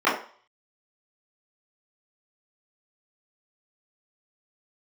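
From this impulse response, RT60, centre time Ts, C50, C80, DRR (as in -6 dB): 0.45 s, 36 ms, 6.0 dB, 10.5 dB, -12.5 dB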